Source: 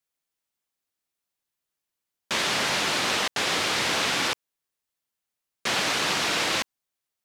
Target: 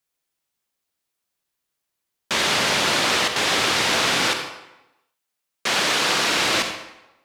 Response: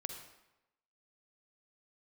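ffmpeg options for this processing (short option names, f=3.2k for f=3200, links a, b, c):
-filter_complex "[0:a]asettb=1/sr,asplit=3[a][b][c];[a]atrim=end=4.314[d];[b]atrim=start=4.31:end=6.31,asetpts=PTS-STARTPTS,afade=t=in:d=0.004:c=qsin,afade=t=out:st=1.996:d=0.004:c=qsin,lowshelf=f=140:g=-9.5[e];[c]atrim=start=6.306[f];[d][e]acrossfade=d=0.004:c1=hsin:c2=qsin[g];[g][f]acrossfade=d=0.004:c1=qsin:c2=hsin[h];[1:a]atrim=start_sample=2205[i];[h][i]afir=irnorm=-1:irlink=0,volume=6.5dB"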